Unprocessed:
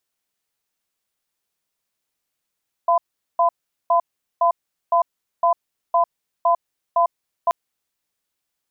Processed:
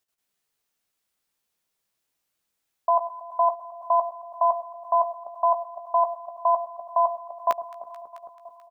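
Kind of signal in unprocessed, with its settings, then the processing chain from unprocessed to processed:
cadence 686 Hz, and 1.01 kHz, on 0.10 s, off 0.41 s, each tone -16 dBFS 4.63 s
echo whose repeats swap between lows and highs 109 ms, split 960 Hz, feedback 86%, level -12 dB; level held to a coarse grid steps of 10 dB; doubling 15 ms -8 dB

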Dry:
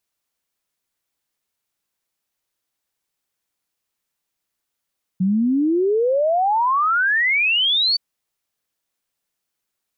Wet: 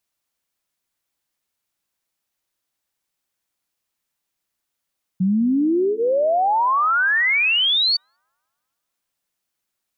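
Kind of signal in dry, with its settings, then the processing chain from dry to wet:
log sweep 180 Hz -> 4.6 kHz 2.77 s -15 dBFS
band-stop 440 Hz, Q 12; bucket-brigade echo 198 ms, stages 2048, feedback 51%, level -20.5 dB

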